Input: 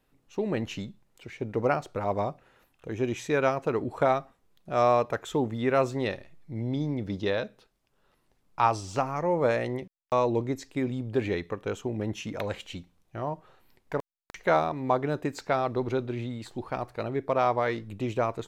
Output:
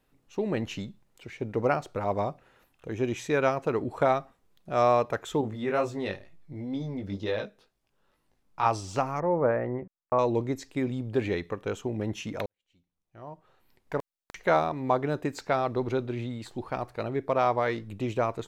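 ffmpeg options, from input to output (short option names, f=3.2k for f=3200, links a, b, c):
-filter_complex "[0:a]asettb=1/sr,asplit=3[a][b][c];[a]atrim=end=5.414[d];[b]atrim=start=5.41:end=8.66,asetpts=PTS-STARTPTS,afade=t=in:d=0.004:c=qsin,afade=t=out:st=3.246:d=0.004:c=qsin,flanger=delay=18:depth=2.9:speed=2.1[e];[c]atrim=start=8.656[f];[d][e]acrossfade=d=0.004:c1=hsin:c2=qsin[g];[g][f]acrossfade=d=0.004:c1=qsin:c2=hsin,asettb=1/sr,asplit=3[h][i][j];[h]atrim=end=9.204[k];[i]atrim=start=9.2:end=10.19,asetpts=PTS-STARTPTS,afade=t=in:d=0.004:c=qsin,afade=t=out:st=0.986:d=0.004:c=qsin,lowpass=f=1.7k:w=0.5412,lowpass=f=1.7k:w=1.3066[l];[j]atrim=start=10.186[m];[k][l]acrossfade=d=0.004:c1=hsin:c2=qsin[n];[n][m]acrossfade=d=0.004:c1=qsin:c2=hsin,asplit=2[o][p];[o]atrim=end=12.46,asetpts=PTS-STARTPTS,afade=t=out:st=12.456:d=0.004:c=hsin[q];[p]atrim=start=12.46,asetpts=PTS-STARTPTS,afade=t=in:d=1.51:c=qua[r];[q][r]concat=n=2:v=0:a=1"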